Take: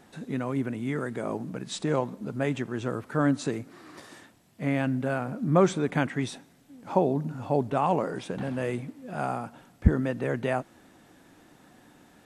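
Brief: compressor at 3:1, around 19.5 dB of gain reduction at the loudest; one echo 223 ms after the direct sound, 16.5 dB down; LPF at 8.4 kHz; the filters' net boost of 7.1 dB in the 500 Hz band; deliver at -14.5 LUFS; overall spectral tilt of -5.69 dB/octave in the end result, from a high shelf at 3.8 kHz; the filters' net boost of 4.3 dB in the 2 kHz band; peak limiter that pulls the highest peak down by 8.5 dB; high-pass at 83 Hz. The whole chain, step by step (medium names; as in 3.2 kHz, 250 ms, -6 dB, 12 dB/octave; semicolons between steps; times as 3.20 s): high-pass 83 Hz; low-pass 8.4 kHz; peaking EQ 500 Hz +8.5 dB; peaking EQ 2 kHz +6.5 dB; treble shelf 3.8 kHz -6.5 dB; compression 3:1, threshold -38 dBFS; peak limiter -28.5 dBFS; delay 223 ms -16.5 dB; trim +25.5 dB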